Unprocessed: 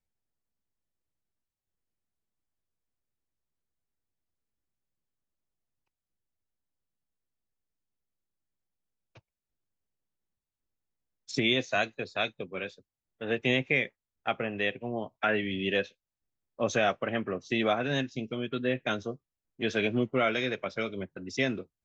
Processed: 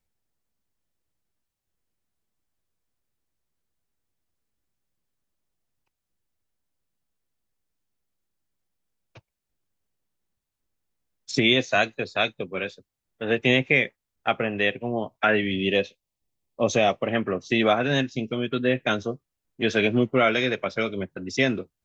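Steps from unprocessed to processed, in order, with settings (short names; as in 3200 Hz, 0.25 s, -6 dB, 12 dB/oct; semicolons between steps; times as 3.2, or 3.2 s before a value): 15.56–17.1 bell 1500 Hz -14.5 dB 0.38 oct; gain +6.5 dB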